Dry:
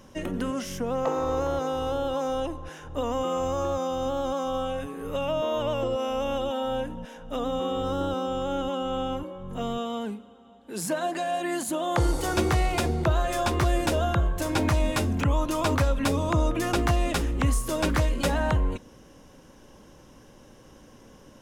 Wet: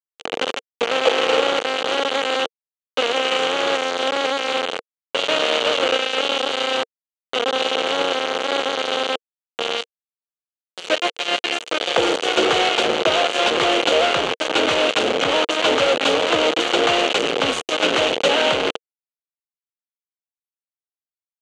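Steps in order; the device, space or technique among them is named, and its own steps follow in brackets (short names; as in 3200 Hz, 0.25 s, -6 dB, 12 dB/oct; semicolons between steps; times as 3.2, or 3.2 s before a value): hand-held game console (bit-crush 4-bit; speaker cabinet 420–5900 Hz, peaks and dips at 470 Hz +8 dB, 1000 Hz -6 dB, 1800 Hz -5 dB, 3000 Hz +8 dB, 5200 Hz -10 dB); gain +8 dB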